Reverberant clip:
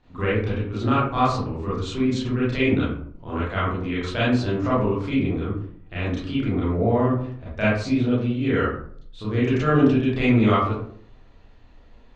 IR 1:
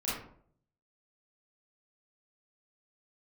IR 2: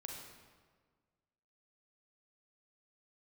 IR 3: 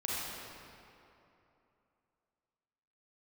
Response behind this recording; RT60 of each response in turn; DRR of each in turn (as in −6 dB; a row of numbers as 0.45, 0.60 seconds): 1; 0.60, 1.6, 2.9 seconds; −9.5, 0.0, −6.5 decibels